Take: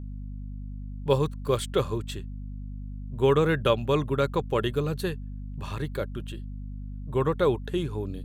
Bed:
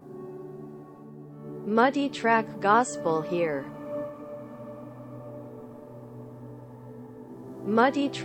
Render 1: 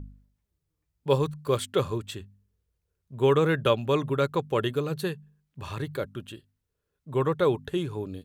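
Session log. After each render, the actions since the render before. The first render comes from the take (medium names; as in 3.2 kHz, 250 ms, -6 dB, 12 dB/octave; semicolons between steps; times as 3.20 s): de-hum 50 Hz, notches 5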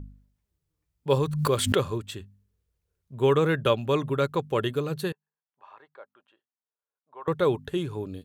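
1.12–1.91 s: swell ahead of each attack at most 46 dB/s; 5.12–7.28 s: ladder band-pass 1 kHz, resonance 40%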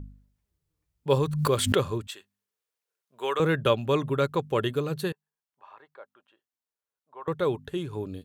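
2.07–3.40 s: high-pass 700 Hz; 7.25–7.93 s: gain -3 dB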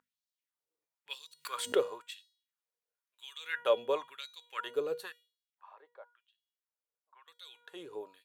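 feedback comb 480 Hz, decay 0.51 s, mix 70%; LFO high-pass sine 0.98 Hz 430–4200 Hz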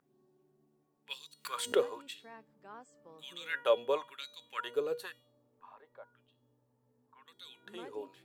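add bed -30 dB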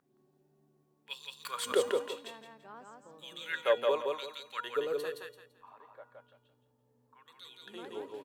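feedback delay 169 ms, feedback 27%, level -3 dB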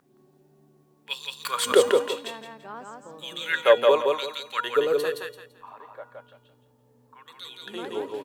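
trim +10.5 dB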